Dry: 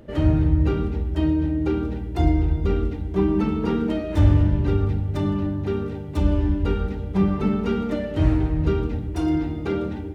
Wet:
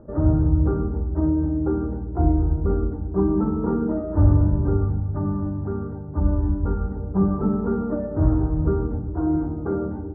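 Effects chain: steep low-pass 1400 Hz 48 dB/oct; 4.83–6.96 dynamic EQ 430 Hz, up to -5 dB, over -39 dBFS, Q 1.1

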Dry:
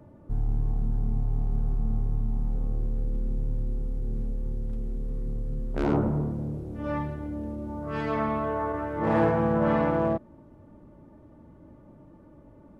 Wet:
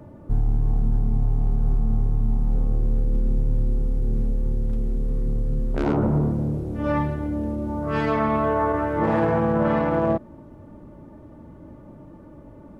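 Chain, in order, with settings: limiter -20.5 dBFS, peak gain reduction 8 dB; gain +7.5 dB

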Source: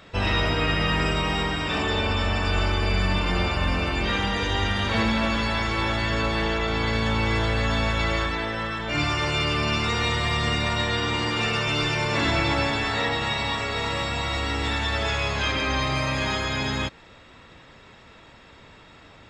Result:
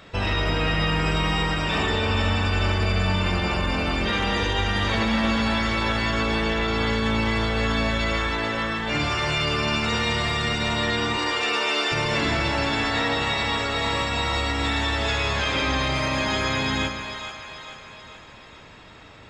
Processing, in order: 11.17–11.92 HPF 320 Hz 24 dB/oct; limiter -16.5 dBFS, peak gain reduction 5 dB; split-band echo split 530 Hz, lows 0.139 s, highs 0.437 s, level -8 dB; gain +1.5 dB

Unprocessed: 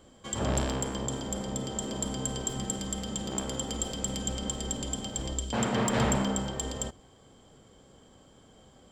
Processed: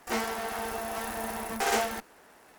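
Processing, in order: minimum comb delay 0.42 ms; wide varispeed 3.45×; bell 120 Hz -12.5 dB 1.2 oct; gain +2 dB

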